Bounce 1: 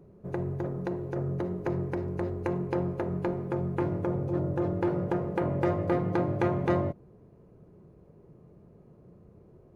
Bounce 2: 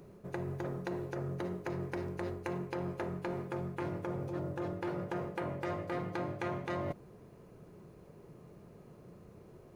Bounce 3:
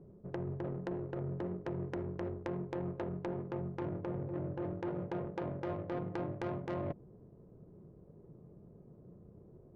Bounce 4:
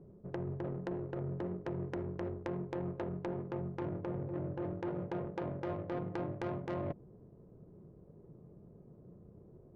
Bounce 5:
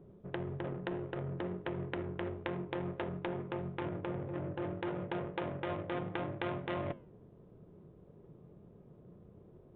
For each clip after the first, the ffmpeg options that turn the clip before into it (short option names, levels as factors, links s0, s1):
-af "tiltshelf=f=1200:g=-7,areverse,acompressor=threshold=0.00891:ratio=6,areverse,equalizer=f=65:t=o:w=0.97:g=-3.5,volume=2.11"
-af "adynamicsmooth=sensitivity=2:basefreq=520"
-af anull
-af "crystalizer=i=9:c=0,flanger=delay=9.7:depth=2.5:regen=-87:speed=1.6:shape=sinusoidal,aresample=8000,aresample=44100,volume=1.5"